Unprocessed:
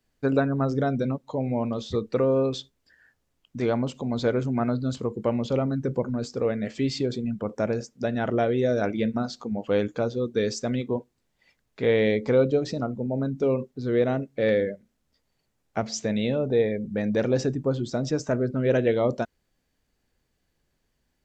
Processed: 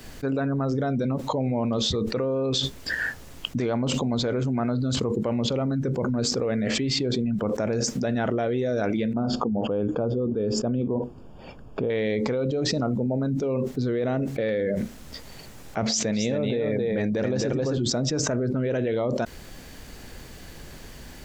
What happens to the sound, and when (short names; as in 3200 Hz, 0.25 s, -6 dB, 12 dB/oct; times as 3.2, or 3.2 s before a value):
6.62–7.34 high shelf 4500 Hz -6.5 dB
9.13–11.9 running mean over 22 samples
15.84–17.78 echo 0.266 s -4 dB
whole clip: fast leveller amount 100%; gain -8.5 dB